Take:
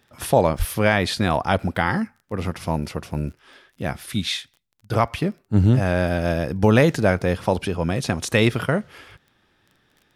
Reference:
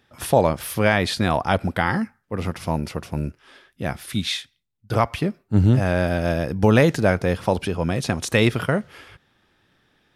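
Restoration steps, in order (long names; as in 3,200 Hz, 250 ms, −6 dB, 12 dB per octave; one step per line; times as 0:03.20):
click removal
0:00.58–0:00.70: high-pass filter 140 Hz 24 dB per octave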